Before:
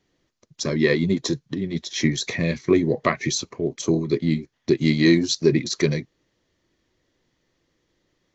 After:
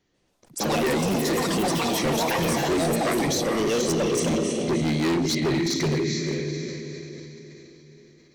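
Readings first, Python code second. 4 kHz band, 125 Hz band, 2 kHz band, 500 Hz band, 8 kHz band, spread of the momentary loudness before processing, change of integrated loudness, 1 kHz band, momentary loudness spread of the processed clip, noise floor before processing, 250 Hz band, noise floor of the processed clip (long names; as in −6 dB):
0.0 dB, −2.5 dB, −1.5 dB, −0.5 dB, can't be measured, 9 LU, −1.5 dB, +7.5 dB, 11 LU, −73 dBFS, −2.5 dB, −62 dBFS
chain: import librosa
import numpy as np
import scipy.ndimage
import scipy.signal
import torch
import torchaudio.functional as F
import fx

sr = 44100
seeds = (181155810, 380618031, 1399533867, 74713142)

p1 = x + fx.echo_diffused(x, sr, ms=474, feedback_pct=42, wet_db=-5.5, dry=0)
p2 = fx.echo_pitch(p1, sr, ms=141, semitones=6, count=3, db_per_echo=-3.0)
p3 = np.clip(10.0 ** (19.0 / 20.0) * p2, -1.0, 1.0) / 10.0 ** (19.0 / 20.0)
p4 = fx.sustainer(p3, sr, db_per_s=21.0)
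y = F.gain(torch.from_numpy(p4), -1.5).numpy()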